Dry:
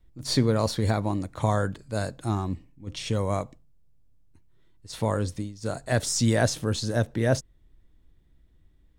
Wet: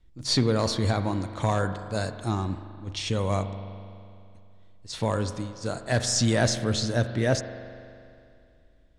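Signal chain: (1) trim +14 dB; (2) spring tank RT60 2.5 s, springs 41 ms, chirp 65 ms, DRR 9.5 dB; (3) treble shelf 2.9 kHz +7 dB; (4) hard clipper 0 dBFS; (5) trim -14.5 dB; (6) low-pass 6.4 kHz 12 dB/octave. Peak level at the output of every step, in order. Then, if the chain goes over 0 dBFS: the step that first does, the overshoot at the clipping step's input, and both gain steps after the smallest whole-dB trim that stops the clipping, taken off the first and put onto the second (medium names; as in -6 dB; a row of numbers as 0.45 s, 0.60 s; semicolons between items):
+4.0 dBFS, +4.5 dBFS, +5.5 dBFS, 0.0 dBFS, -14.5 dBFS, -14.0 dBFS; step 1, 5.5 dB; step 1 +8 dB, step 5 -8.5 dB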